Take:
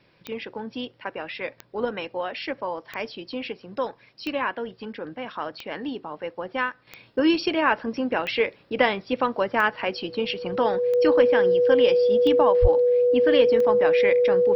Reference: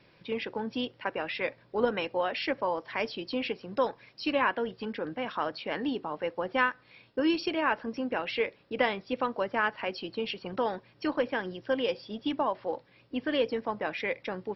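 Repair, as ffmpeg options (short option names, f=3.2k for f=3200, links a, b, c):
-filter_complex "[0:a]adeclick=t=4,bandreject=f=490:w=30,asplit=3[a][b][c];[a]afade=t=out:st=12.61:d=0.02[d];[b]highpass=f=140:w=0.5412,highpass=f=140:w=1.3066,afade=t=in:st=12.61:d=0.02,afade=t=out:st=12.73:d=0.02[e];[c]afade=t=in:st=12.73:d=0.02[f];[d][e][f]amix=inputs=3:normalize=0,asetnsamples=n=441:p=0,asendcmd='6.87 volume volume -6.5dB',volume=0dB"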